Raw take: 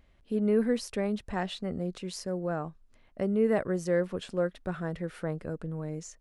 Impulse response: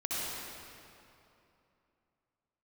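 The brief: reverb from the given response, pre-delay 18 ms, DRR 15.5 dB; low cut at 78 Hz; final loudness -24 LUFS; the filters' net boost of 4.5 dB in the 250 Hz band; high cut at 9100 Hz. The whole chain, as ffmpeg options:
-filter_complex "[0:a]highpass=78,lowpass=9.1k,equalizer=f=250:t=o:g=6,asplit=2[a][b];[1:a]atrim=start_sample=2205,adelay=18[c];[b][c]afir=irnorm=-1:irlink=0,volume=-21.5dB[d];[a][d]amix=inputs=2:normalize=0,volume=4.5dB"

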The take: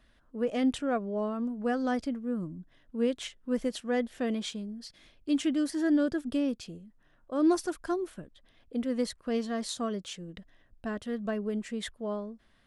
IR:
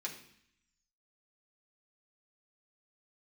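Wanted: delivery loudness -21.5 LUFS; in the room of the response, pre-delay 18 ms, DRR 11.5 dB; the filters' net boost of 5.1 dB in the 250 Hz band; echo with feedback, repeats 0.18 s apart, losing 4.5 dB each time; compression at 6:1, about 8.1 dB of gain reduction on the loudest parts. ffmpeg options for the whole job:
-filter_complex "[0:a]equalizer=f=250:t=o:g=6,acompressor=threshold=-25dB:ratio=6,aecho=1:1:180|360|540|720|900|1080|1260|1440|1620:0.596|0.357|0.214|0.129|0.0772|0.0463|0.0278|0.0167|0.01,asplit=2[a][b];[1:a]atrim=start_sample=2205,adelay=18[c];[b][c]afir=irnorm=-1:irlink=0,volume=-11.5dB[d];[a][d]amix=inputs=2:normalize=0,volume=8dB"

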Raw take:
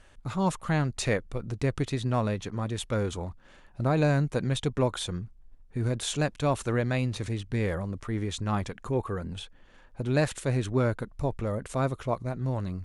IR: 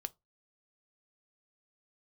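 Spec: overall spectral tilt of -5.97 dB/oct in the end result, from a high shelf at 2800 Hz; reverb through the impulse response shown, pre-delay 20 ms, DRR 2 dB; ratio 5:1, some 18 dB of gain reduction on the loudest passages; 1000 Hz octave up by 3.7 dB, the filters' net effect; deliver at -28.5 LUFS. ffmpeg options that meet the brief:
-filter_complex "[0:a]equalizer=f=1k:t=o:g=5.5,highshelf=f=2.8k:g=-6,acompressor=threshold=-41dB:ratio=5,asplit=2[a][b];[1:a]atrim=start_sample=2205,adelay=20[c];[b][c]afir=irnorm=-1:irlink=0,volume=0dB[d];[a][d]amix=inputs=2:normalize=0,volume=13.5dB"

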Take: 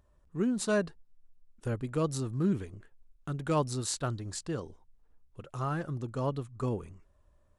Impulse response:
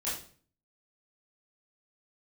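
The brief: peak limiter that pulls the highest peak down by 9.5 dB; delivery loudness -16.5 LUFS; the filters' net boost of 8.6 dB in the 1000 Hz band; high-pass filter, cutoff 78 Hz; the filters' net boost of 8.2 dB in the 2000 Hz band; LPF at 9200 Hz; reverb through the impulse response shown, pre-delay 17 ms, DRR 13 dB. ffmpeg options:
-filter_complex "[0:a]highpass=78,lowpass=9.2k,equalizer=f=1k:t=o:g=8,equalizer=f=2k:t=o:g=8,alimiter=limit=-20.5dB:level=0:latency=1,asplit=2[a][b];[1:a]atrim=start_sample=2205,adelay=17[c];[b][c]afir=irnorm=-1:irlink=0,volume=-17.5dB[d];[a][d]amix=inputs=2:normalize=0,volume=17dB"

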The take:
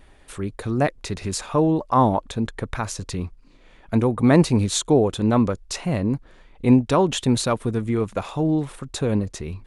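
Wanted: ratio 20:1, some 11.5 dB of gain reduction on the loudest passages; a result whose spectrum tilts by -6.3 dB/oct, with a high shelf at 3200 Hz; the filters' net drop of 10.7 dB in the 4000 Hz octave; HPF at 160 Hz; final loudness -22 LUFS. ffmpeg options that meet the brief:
-af "highpass=160,highshelf=f=3.2k:g=-9,equalizer=f=4k:t=o:g=-6.5,acompressor=threshold=-22dB:ratio=20,volume=8dB"

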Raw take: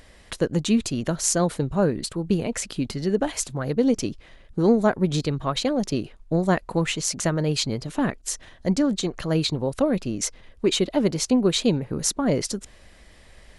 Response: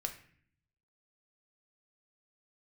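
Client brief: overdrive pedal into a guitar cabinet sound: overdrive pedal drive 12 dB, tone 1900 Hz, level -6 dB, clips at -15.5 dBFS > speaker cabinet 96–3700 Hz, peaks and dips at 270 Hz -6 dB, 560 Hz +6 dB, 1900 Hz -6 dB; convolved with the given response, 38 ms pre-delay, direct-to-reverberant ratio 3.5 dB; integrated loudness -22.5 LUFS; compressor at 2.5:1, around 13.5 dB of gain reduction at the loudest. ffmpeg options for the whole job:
-filter_complex "[0:a]acompressor=threshold=-36dB:ratio=2.5,asplit=2[a][b];[1:a]atrim=start_sample=2205,adelay=38[c];[b][c]afir=irnorm=-1:irlink=0,volume=-3.5dB[d];[a][d]amix=inputs=2:normalize=0,asplit=2[e][f];[f]highpass=f=720:p=1,volume=12dB,asoftclip=type=tanh:threshold=-15.5dB[g];[e][g]amix=inputs=2:normalize=0,lowpass=f=1.9k:p=1,volume=-6dB,highpass=96,equalizer=f=270:t=q:w=4:g=-6,equalizer=f=560:t=q:w=4:g=6,equalizer=f=1.9k:t=q:w=4:g=-6,lowpass=f=3.7k:w=0.5412,lowpass=f=3.7k:w=1.3066,volume=10.5dB"

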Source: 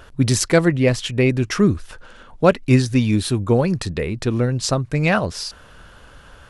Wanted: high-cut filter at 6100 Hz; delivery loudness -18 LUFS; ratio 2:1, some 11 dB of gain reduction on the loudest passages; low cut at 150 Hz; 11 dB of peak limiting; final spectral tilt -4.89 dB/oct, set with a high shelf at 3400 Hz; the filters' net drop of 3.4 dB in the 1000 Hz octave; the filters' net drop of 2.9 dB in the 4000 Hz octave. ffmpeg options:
-af "highpass=150,lowpass=6.1k,equalizer=f=1k:t=o:g=-5.5,highshelf=f=3.4k:g=7,equalizer=f=4k:t=o:g=-8,acompressor=threshold=-31dB:ratio=2,volume=15dB,alimiter=limit=-7dB:level=0:latency=1"

